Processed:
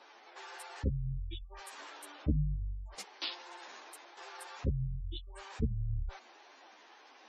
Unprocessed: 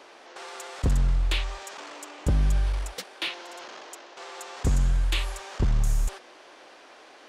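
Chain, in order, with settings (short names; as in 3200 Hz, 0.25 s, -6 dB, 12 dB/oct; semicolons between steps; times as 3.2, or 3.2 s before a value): spectral gate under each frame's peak -20 dB strong; formant shift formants +4 st; ensemble effect; gain -4.5 dB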